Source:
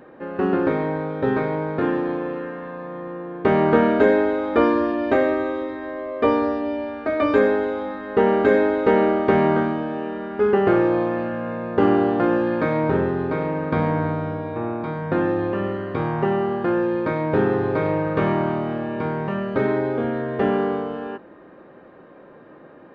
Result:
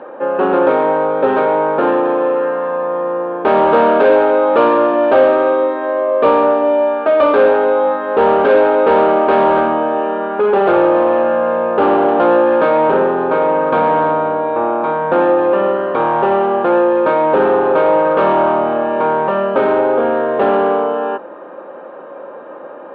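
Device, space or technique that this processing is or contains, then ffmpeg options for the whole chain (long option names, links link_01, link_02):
overdrive pedal into a guitar cabinet: -filter_complex "[0:a]asplit=2[link_01][link_02];[link_02]highpass=frequency=720:poles=1,volume=23dB,asoftclip=type=tanh:threshold=-3.5dB[link_03];[link_01][link_03]amix=inputs=2:normalize=0,lowpass=frequency=2300:poles=1,volume=-6dB,highpass=97,equalizer=frequency=100:width_type=q:width=4:gain=-8,equalizer=frequency=140:width_type=q:width=4:gain=-7,equalizer=frequency=550:width_type=q:width=4:gain=9,equalizer=frequency=890:width_type=q:width=4:gain=6,equalizer=frequency=1300:width_type=q:width=4:gain=3,equalizer=frequency=2000:width_type=q:width=4:gain=-9,lowpass=frequency=3600:width=0.5412,lowpass=frequency=3600:width=1.3066,volume=-3dB"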